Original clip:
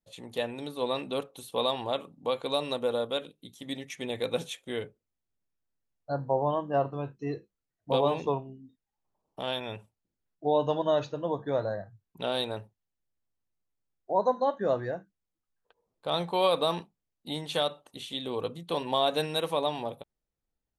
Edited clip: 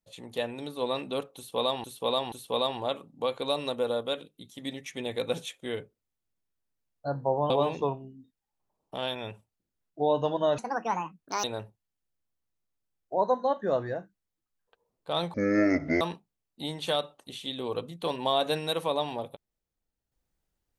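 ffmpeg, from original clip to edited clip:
-filter_complex "[0:a]asplit=8[s0][s1][s2][s3][s4][s5][s6][s7];[s0]atrim=end=1.842[s8];[s1]atrim=start=1.358:end=1.842[s9];[s2]atrim=start=1.358:end=6.542[s10];[s3]atrim=start=7.948:end=11.034[s11];[s4]atrim=start=11.03:end=12.41,asetpts=PTS-STARTPTS,asetrate=71001,aresample=44100[s12];[s5]atrim=start=12.406:end=16.314[s13];[s6]atrim=start=16.31:end=16.68,asetpts=PTS-STARTPTS,asetrate=24255,aresample=44100,atrim=end_sample=29667,asetpts=PTS-STARTPTS[s14];[s7]atrim=start=16.676[s15];[s8][s9]acrossfade=d=0.004:c1=hsin:c2=hsin[s16];[s16][s10]acrossfade=d=0.004:c1=hsin:c2=hsin[s17];[s17][s11]acrossfade=d=0.004:c1=hsin:c2=hsin[s18];[s18][s12]acrossfade=d=0.004:c1=hsin:c2=hsin[s19];[s19][s13]acrossfade=d=0.004:c1=hsin:c2=hsin[s20];[s20][s14]acrossfade=d=0.004:c1=hsin:c2=hsin[s21];[s21][s15]acrossfade=d=0.004:c1=hsin:c2=hsin"

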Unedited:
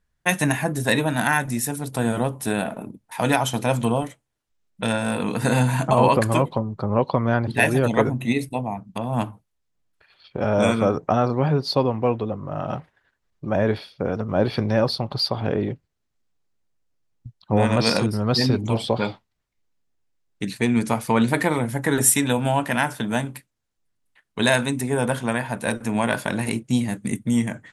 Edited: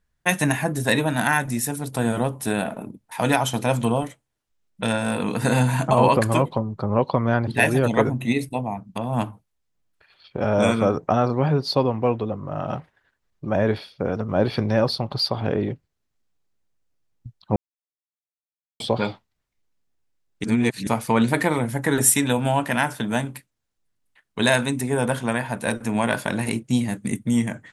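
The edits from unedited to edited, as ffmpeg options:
-filter_complex "[0:a]asplit=5[s0][s1][s2][s3][s4];[s0]atrim=end=17.56,asetpts=PTS-STARTPTS,afade=t=out:st=17.556:d=0.004:c=hsin[s5];[s1]atrim=start=17.56:end=18.8,asetpts=PTS-STARTPTS,volume=0[s6];[s2]atrim=start=18.8:end=20.442,asetpts=PTS-STARTPTS,afade=t=in:d=0.004:c=hsin[s7];[s3]atrim=start=20.438:end=20.872,asetpts=PTS-STARTPTS,areverse[s8];[s4]atrim=start=20.868[s9];[s5][s6][s7]concat=n=3:v=0:a=1[s10];[s10][s8]acrossfade=d=0.004:c1=hsin:c2=hsin[s11];[s11][s9]acrossfade=d=0.004:c1=hsin:c2=hsin"

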